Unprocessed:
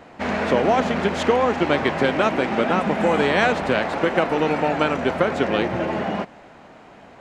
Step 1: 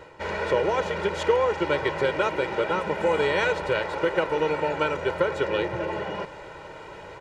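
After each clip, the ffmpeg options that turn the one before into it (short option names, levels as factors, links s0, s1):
-af "aecho=1:1:2.1:0.96,areverse,acompressor=mode=upward:threshold=0.0708:ratio=2.5,areverse,volume=0.422"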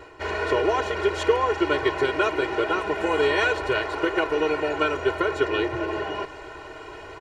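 -af "aecho=1:1:2.8:0.82"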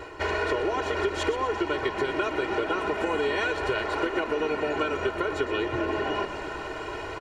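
-filter_complex "[0:a]acompressor=threshold=0.0355:ratio=6,asplit=7[s0][s1][s2][s3][s4][s5][s6];[s1]adelay=122,afreqshift=-46,volume=0.251[s7];[s2]adelay=244,afreqshift=-92,volume=0.141[s8];[s3]adelay=366,afreqshift=-138,volume=0.0785[s9];[s4]adelay=488,afreqshift=-184,volume=0.0442[s10];[s5]adelay=610,afreqshift=-230,volume=0.0248[s11];[s6]adelay=732,afreqshift=-276,volume=0.0138[s12];[s0][s7][s8][s9][s10][s11][s12]amix=inputs=7:normalize=0,volume=1.68"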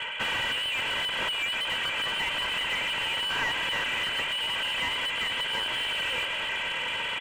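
-filter_complex "[0:a]lowpass=f=2900:t=q:w=0.5098,lowpass=f=2900:t=q:w=0.6013,lowpass=f=2900:t=q:w=0.9,lowpass=f=2900:t=q:w=2.563,afreqshift=-3400,asplit=2[s0][s1];[s1]highpass=f=720:p=1,volume=20,asoftclip=type=tanh:threshold=0.224[s2];[s0][s2]amix=inputs=2:normalize=0,lowpass=f=1000:p=1,volume=0.501,volume=0.794"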